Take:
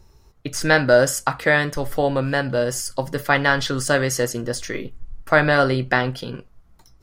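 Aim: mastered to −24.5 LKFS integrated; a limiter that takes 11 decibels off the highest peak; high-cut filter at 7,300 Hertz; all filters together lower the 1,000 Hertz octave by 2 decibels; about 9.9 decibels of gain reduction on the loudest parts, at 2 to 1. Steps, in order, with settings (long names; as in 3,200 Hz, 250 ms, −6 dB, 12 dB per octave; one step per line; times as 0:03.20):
low-pass filter 7,300 Hz
parametric band 1,000 Hz −3 dB
downward compressor 2 to 1, threshold −29 dBFS
level +8 dB
brickwall limiter −13 dBFS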